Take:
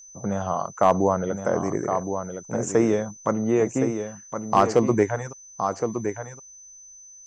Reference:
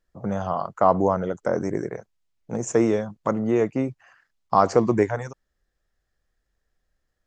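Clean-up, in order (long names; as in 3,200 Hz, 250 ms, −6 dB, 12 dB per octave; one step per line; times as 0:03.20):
clipped peaks rebuilt −8 dBFS
notch filter 6,100 Hz, Q 30
echo removal 1,066 ms −7.5 dB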